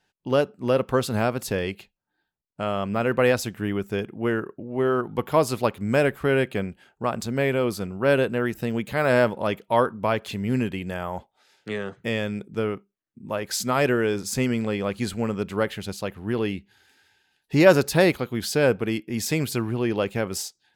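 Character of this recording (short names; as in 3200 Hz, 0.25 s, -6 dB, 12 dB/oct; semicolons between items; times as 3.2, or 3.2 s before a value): noise floor -77 dBFS; spectral tilt -5.5 dB/oct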